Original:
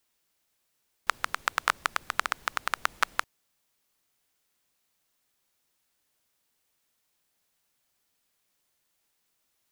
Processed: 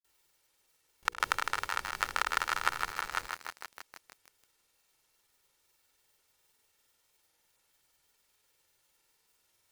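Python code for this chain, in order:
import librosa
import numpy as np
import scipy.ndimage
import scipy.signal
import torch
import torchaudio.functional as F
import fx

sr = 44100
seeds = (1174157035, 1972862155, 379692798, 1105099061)

y = fx.granulator(x, sr, seeds[0], grain_ms=100.0, per_s=20.0, spray_ms=100.0, spread_st=0)
y = y + 0.44 * np.pad(y, (int(2.2 * sr / 1000.0), 0))[:len(y)]
y = fx.over_compress(y, sr, threshold_db=-32.0, ratio=-0.5)
y = fx.hum_notches(y, sr, base_hz=60, count=8)
y = fx.echo_crushed(y, sr, ms=158, feedback_pct=80, bits=7, wet_db=-5.5)
y = F.gain(torch.from_numpy(y), 1.0).numpy()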